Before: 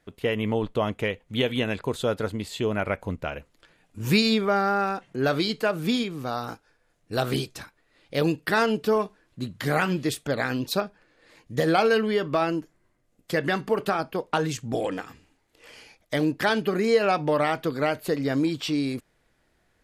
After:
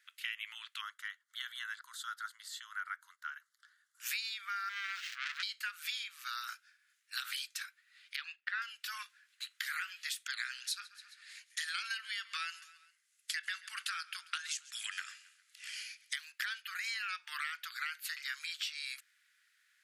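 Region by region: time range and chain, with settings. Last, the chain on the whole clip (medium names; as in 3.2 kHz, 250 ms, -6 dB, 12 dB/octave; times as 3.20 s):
0.81–4.00 s: tilt EQ -2 dB/octave + static phaser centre 670 Hz, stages 6
4.69–5.43 s: zero-crossing glitches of -20.5 dBFS + distance through air 210 m + transformer saturation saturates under 2.9 kHz
8.16–8.62 s: band-pass 760–2800 Hz + three bands expanded up and down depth 100%
10.26–16.16 s: elliptic low-pass 11 kHz + tilt EQ +2.5 dB/octave + feedback delay 135 ms, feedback 53%, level -23.5 dB
whole clip: steep high-pass 1.4 kHz 48 dB/octave; compression 10:1, threshold -37 dBFS; trim +1.5 dB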